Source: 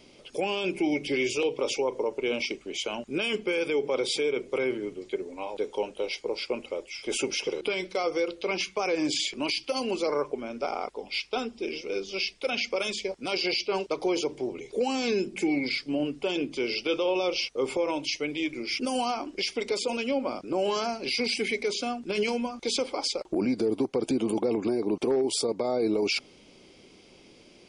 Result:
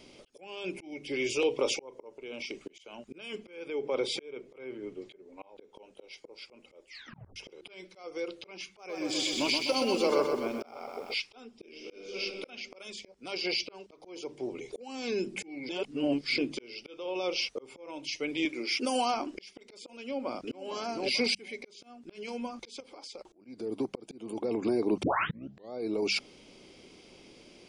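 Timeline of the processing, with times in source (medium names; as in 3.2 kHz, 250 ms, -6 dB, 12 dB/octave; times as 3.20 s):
2.14–2.66 s: compression 2.5:1, threshold -33 dBFS
3.49–5.75 s: treble shelf 5.2 kHz -11 dB
6.89 s: tape stop 0.47 s
8.66–11.14 s: bit-crushed delay 126 ms, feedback 55%, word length 9-bit, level -5 dB
11.68–12.20 s: reverb throw, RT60 1.7 s, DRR 0 dB
15.69–16.38 s: reverse
18.45–19.14 s: high-pass 240 Hz
20.02–20.63 s: echo throw 450 ms, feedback 20%, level -5.5 dB
21.35–22.04 s: fade in
22.80–23.45 s: compression 5:1, threshold -39 dBFS
25.03 s: tape start 0.70 s
whole clip: hum notches 50/100/150/200 Hz; slow attack 673 ms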